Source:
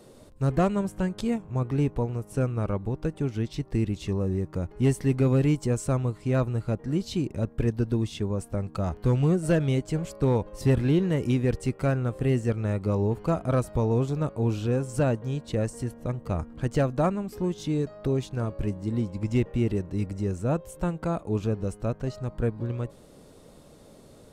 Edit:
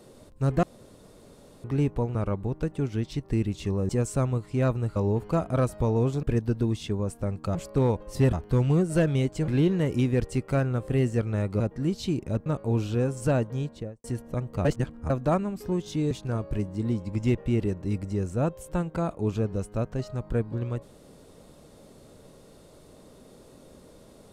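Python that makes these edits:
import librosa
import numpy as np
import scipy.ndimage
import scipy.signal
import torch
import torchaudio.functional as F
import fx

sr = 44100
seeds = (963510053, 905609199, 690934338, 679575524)

y = fx.studio_fade_out(x, sr, start_s=15.3, length_s=0.46)
y = fx.edit(y, sr, fx.room_tone_fill(start_s=0.63, length_s=1.01),
    fx.cut(start_s=2.15, length_s=0.42),
    fx.cut(start_s=4.31, length_s=1.3),
    fx.swap(start_s=6.68, length_s=0.86, other_s=12.91, other_length_s=1.27),
    fx.move(start_s=10.01, length_s=0.78, to_s=8.86),
    fx.reverse_span(start_s=16.37, length_s=0.45),
    fx.cut(start_s=17.83, length_s=0.36), tone=tone)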